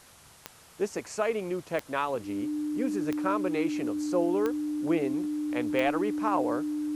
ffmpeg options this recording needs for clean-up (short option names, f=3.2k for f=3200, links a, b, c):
-af "adeclick=t=4,bandreject=f=300:w=30,afwtdn=0.002"